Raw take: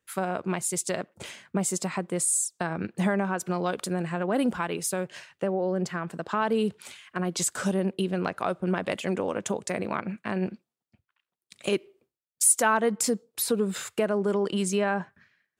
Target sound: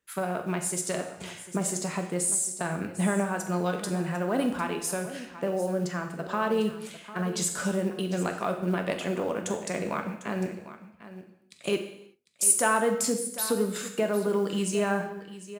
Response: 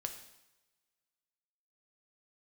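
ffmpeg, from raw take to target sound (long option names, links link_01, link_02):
-filter_complex "[0:a]acrusher=bits=8:mode=log:mix=0:aa=0.000001,aecho=1:1:45|750:0.178|0.188[link_01];[1:a]atrim=start_sample=2205,afade=type=out:start_time=0.44:duration=0.01,atrim=end_sample=19845[link_02];[link_01][link_02]afir=irnorm=-1:irlink=0"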